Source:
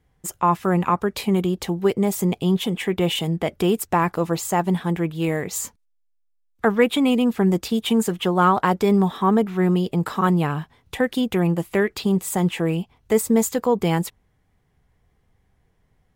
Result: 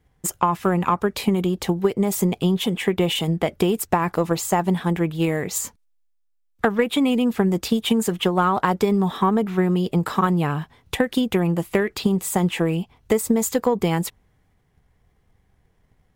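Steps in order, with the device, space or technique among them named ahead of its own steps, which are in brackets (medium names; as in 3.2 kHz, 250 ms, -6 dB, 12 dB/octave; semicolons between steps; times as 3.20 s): drum-bus smash (transient shaper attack +7 dB, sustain +3 dB; compression, threshold -14 dBFS, peak gain reduction 8 dB; saturation -4.5 dBFS, distortion -27 dB)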